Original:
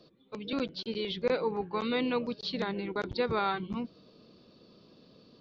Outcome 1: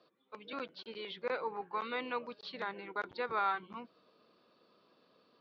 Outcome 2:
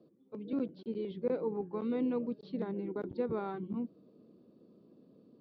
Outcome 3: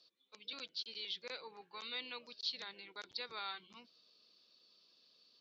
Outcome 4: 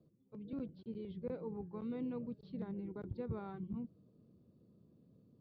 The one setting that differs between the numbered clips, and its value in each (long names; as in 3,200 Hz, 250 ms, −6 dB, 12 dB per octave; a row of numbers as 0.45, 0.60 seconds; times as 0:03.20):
resonant band-pass, frequency: 1,300, 280, 5,600, 100 Hertz